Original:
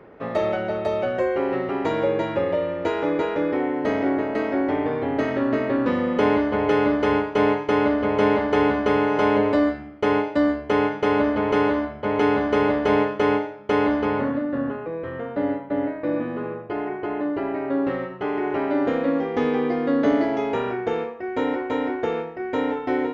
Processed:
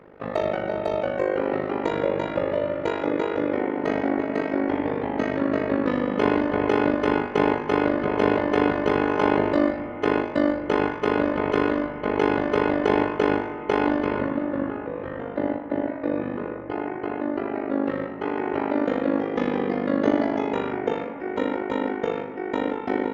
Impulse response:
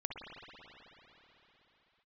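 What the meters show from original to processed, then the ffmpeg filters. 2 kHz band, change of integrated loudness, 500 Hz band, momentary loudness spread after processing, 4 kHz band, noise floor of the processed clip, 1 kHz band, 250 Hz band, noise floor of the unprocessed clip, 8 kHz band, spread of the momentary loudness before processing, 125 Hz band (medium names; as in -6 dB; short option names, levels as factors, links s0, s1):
-1.5 dB, -1.5 dB, -2.0 dB, 7 LU, -2.0 dB, -34 dBFS, -1.5 dB, -1.5 dB, -36 dBFS, no reading, 7 LU, -1.0 dB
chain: -filter_complex "[0:a]tremolo=f=50:d=0.947,asplit=2[s0][s1];[1:a]atrim=start_sample=2205,asetrate=31311,aresample=44100[s2];[s1][s2]afir=irnorm=-1:irlink=0,volume=0.335[s3];[s0][s3]amix=inputs=2:normalize=0"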